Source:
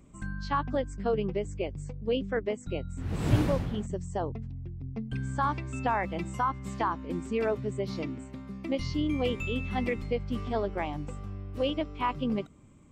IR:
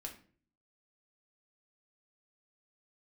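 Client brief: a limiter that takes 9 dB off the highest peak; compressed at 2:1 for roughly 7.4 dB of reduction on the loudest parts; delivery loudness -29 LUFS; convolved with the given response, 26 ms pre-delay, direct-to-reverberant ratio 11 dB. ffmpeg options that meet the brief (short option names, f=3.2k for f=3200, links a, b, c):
-filter_complex "[0:a]acompressor=threshold=-31dB:ratio=2,alimiter=level_in=5dB:limit=-24dB:level=0:latency=1,volume=-5dB,asplit=2[a][b];[1:a]atrim=start_sample=2205,adelay=26[c];[b][c]afir=irnorm=-1:irlink=0,volume=-8dB[d];[a][d]amix=inputs=2:normalize=0,volume=9dB"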